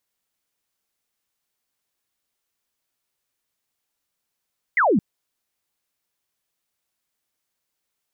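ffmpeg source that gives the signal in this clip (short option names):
-f lavfi -i "aevalsrc='0.188*clip(t/0.002,0,1)*clip((0.22-t)/0.002,0,1)*sin(2*PI*2200*0.22/log(170/2200)*(exp(log(170/2200)*t/0.22)-1))':d=0.22:s=44100"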